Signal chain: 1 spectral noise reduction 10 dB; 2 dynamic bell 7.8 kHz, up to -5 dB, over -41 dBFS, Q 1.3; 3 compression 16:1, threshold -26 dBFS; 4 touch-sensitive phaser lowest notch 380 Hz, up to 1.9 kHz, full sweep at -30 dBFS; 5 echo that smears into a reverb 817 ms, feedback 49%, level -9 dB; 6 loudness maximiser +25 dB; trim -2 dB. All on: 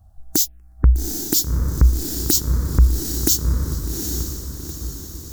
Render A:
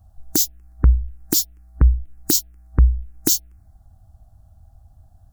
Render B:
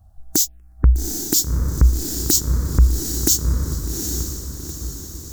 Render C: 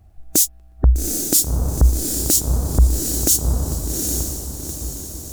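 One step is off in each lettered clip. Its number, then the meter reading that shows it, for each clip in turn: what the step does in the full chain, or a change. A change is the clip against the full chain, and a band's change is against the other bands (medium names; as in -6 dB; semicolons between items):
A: 5, momentary loudness spread change -7 LU; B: 2, 8 kHz band +2.5 dB; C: 4, 8 kHz band +4.5 dB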